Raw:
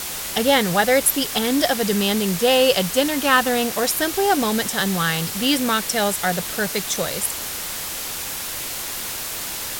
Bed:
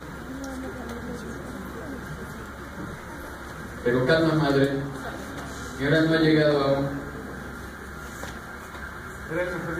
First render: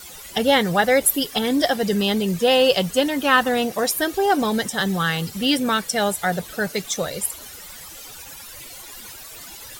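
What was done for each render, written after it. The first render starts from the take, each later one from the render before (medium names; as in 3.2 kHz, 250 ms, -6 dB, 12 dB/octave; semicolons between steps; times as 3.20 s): noise reduction 15 dB, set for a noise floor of -29 dBFS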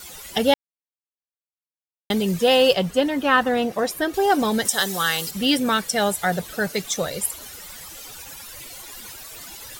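0.54–2.10 s: mute; 2.73–4.14 s: treble shelf 3.8 kHz -10.5 dB; 4.65–5.31 s: tone controls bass -13 dB, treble +9 dB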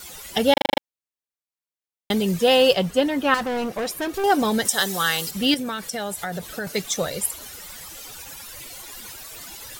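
0.53 s: stutter in place 0.04 s, 7 plays; 3.34–4.24 s: overload inside the chain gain 23 dB; 5.54–6.67 s: compression, threshold -25 dBFS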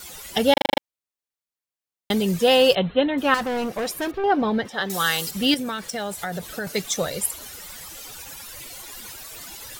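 2.75–3.18 s: brick-wall FIR low-pass 4.2 kHz; 4.11–4.90 s: distance through air 340 m; 5.71–6.16 s: median filter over 3 samples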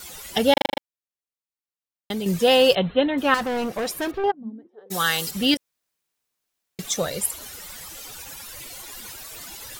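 0.68–2.26 s: gain -6 dB; 4.30–4.90 s: band-pass filter 160 Hz -> 530 Hz, Q 17; 5.57–6.79 s: room tone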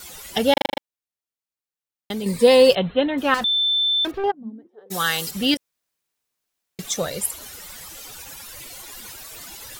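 2.23–2.70 s: rippled EQ curve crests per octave 0.95, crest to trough 11 dB; 3.44–4.05 s: bleep 3.54 kHz -17 dBFS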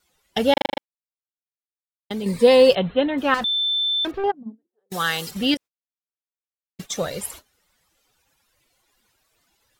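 gate -33 dBFS, range -25 dB; treble shelf 6 kHz -8.5 dB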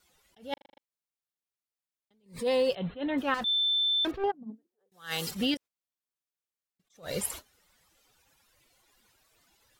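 compression 4:1, threshold -26 dBFS, peak gain reduction 14 dB; attacks held to a fixed rise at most 190 dB/s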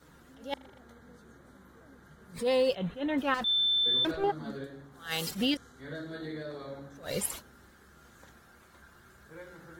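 add bed -20 dB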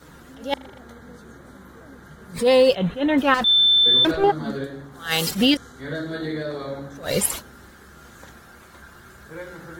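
trim +11 dB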